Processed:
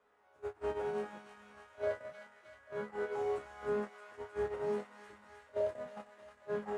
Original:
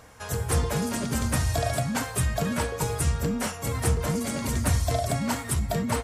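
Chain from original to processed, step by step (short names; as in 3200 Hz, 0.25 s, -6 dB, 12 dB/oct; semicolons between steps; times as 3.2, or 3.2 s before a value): delta modulation 64 kbps, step -31.5 dBFS; three-band isolator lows -21 dB, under 300 Hz, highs -22 dB, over 2500 Hz; in parallel at -2.5 dB: negative-ratio compressor -36 dBFS, ratio -1; on the sum: resonator bank D#2 minor, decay 0.47 s; varispeed -11%; gate -36 dBFS, range -25 dB; on a send: thin delay 0.311 s, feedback 69%, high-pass 1400 Hz, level -6 dB; on the sum: gain +2.5 dB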